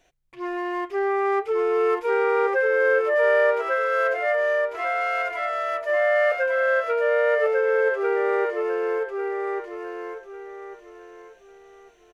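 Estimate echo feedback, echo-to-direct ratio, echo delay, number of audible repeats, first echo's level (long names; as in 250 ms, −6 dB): 28%, −2.5 dB, 1,147 ms, 3, −3.0 dB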